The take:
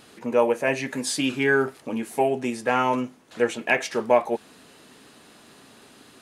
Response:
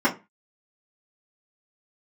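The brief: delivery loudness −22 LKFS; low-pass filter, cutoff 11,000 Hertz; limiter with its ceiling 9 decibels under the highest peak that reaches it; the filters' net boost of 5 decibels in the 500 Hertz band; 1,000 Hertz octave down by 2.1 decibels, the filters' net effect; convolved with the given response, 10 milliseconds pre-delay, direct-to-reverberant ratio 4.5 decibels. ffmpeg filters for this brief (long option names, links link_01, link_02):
-filter_complex "[0:a]lowpass=11000,equalizer=frequency=500:width_type=o:gain=7.5,equalizer=frequency=1000:width_type=o:gain=-6,alimiter=limit=-12.5dB:level=0:latency=1,asplit=2[link_01][link_02];[1:a]atrim=start_sample=2205,adelay=10[link_03];[link_02][link_03]afir=irnorm=-1:irlink=0,volume=-21dB[link_04];[link_01][link_04]amix=inputs=2:normalize=0,volume=0.5dB"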